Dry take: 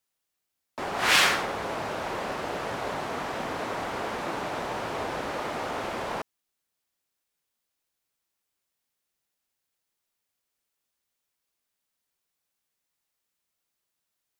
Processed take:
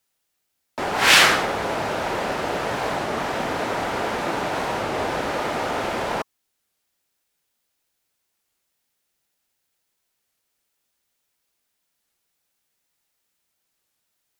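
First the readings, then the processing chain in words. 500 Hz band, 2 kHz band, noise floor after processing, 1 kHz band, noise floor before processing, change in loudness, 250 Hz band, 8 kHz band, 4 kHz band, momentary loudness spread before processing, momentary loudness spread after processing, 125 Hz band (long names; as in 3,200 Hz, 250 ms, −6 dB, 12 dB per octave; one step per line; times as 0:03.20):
+7.0 dB, +7.0 dB, −76 dBFS, +6.5 dB, −83 dBFS, +7.0 dB, +7.0 dB, +7.0 dB, +7.0 dB, 12 LU, 12 LU, +7.0 dB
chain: notch filter 1,100 Hz, Q 15
wow of a warped record 33 1/3 rpm, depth 160 cents
level +7 dB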